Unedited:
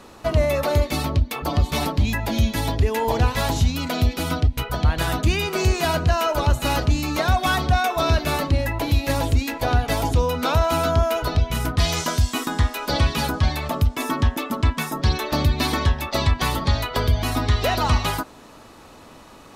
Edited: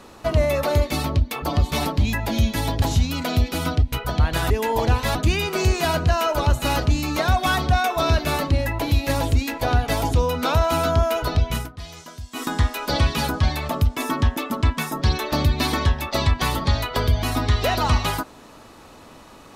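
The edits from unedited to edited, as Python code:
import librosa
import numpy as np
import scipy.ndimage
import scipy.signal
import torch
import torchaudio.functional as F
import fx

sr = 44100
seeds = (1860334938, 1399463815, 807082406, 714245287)

y = fx.edit(x, sr, fx.move(start_s=2.82, length_s=0.65, to_s=5.15),
    fx.fade_down_up(start_s=11.55, length_s=0.9, db=-16.5, fade_s=0.14), tone=tone)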